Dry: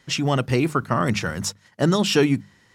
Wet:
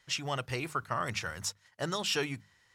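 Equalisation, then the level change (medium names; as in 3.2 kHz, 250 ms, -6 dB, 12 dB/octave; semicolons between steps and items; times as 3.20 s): peaking EQ 230 Hz -14.5 dB 1.9 oct; -7.5 dB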